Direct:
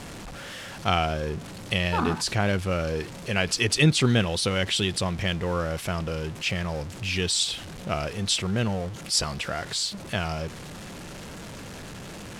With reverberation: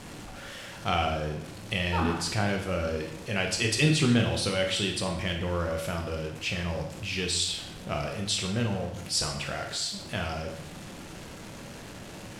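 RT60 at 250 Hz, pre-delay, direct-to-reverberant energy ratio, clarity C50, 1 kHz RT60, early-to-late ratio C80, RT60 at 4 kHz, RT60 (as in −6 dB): 0.85 s, 17 ms, 2.0 dB, 6.0 dB, 0.75 s, 8.5 dB, 0.65 s, 0.80 s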